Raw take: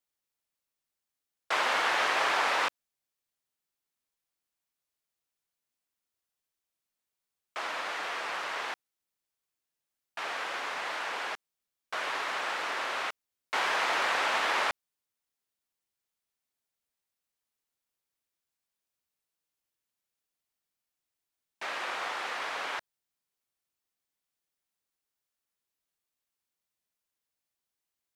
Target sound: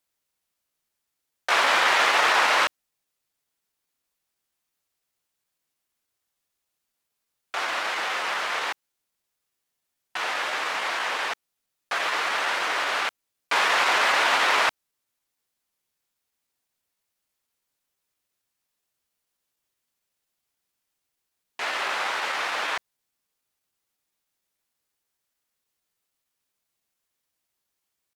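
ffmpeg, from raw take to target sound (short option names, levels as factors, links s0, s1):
-af "asetrate=48091,aresample=44100,atempo=0.917004,volume=2.37"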